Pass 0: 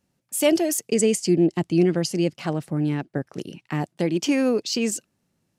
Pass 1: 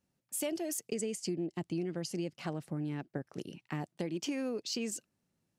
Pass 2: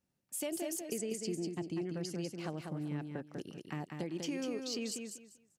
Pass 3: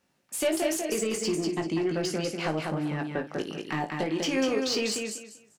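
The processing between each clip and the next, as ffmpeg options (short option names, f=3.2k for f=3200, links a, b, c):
-af "acompressor=threshold=-24dB:ratio=6,volume=-8.5dB"
-af "aecho=1:1:195|390|585:0.562|0.124|0.0272,volume=-3dB"
-filter_complex "[0:a]asplit=2[a][b];[b]highpass=f=720:p=1,volume=15dB,asoftclip=type=tanh:threshold=-24.5dB[c];[a][c]amix=inputs=2:normalize=0,lowpass=f=3.2k:p=1,volume=-6dB,aecho=1:1:19|56:0.531|0.237,volume=7.5dB"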